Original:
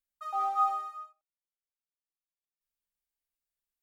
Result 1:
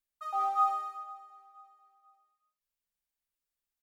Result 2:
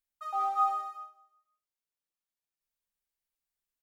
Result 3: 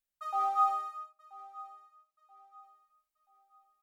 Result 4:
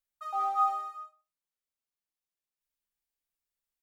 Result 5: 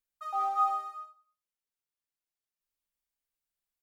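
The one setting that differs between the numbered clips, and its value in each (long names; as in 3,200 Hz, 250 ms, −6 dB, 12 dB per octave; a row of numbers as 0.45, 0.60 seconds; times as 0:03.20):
repeating echo, delay time: 487, 174, 981, 66, 97 milliseconds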